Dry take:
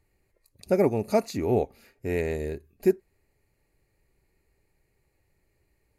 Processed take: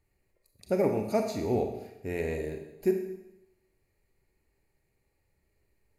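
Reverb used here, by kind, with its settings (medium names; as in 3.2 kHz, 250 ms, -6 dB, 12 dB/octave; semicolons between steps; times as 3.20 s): Schroeder reverb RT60 0.87 s, combs from 29 ms, DRR 4 dB; trim -5 dB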